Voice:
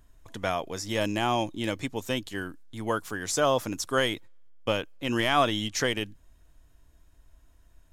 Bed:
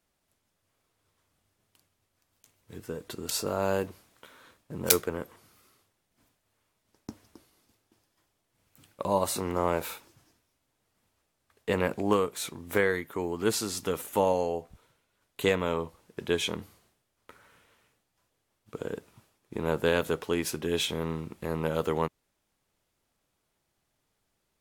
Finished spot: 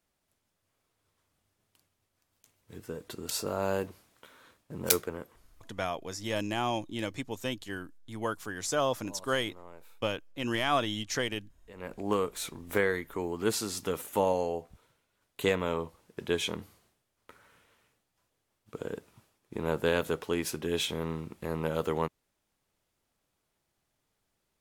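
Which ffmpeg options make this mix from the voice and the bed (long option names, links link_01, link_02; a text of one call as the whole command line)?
ffmpeg -i stem1.wav -i stem2.wav -filter_complex "[0:a]adelay=5350,volume=-4.5dB[link_01];[1:a]volume=19dB,afade=type=out:start_time=4.87:duration=1:silence=0.0891251,afade=type=in:start_time=11.74:duration=0.52:silence=0.0841395[link_02];[link_01][link_02]amix=inputs=2:normalize=0" out.wav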